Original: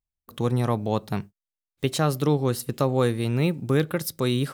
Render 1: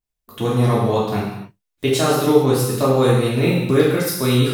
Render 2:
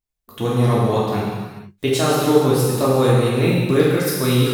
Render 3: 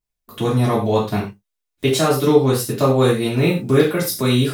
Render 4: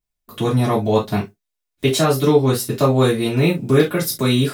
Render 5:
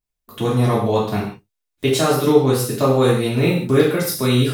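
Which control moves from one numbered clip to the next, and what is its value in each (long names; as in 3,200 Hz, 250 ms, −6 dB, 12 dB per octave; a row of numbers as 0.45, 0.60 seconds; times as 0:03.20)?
reverb whose tail is shaped and stops, gate: 320, 520, 140, 90, 200 milliseconds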